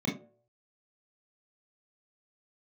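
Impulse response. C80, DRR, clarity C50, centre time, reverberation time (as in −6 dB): 14.5 dB, −3.5 dB, 7.5 dB, 31 ms, 0.55 s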